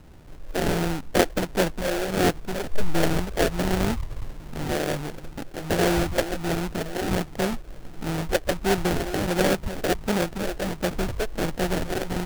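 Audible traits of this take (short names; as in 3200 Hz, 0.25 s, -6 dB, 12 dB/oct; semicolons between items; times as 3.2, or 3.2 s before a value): phasing stages 4, 1.4 Hz, lowest notch 190–2100 Hz; aliases and images of a low sample rate 1100 Hz, jitter 20%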